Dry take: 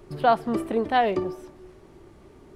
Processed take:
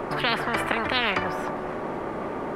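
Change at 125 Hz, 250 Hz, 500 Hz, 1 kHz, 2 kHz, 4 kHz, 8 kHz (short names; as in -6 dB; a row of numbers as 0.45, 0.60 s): +2.0 dB, -2.0 dB, -3.0 dB, -3.0 dB, +8.5 dB, +10.0 dB, n/a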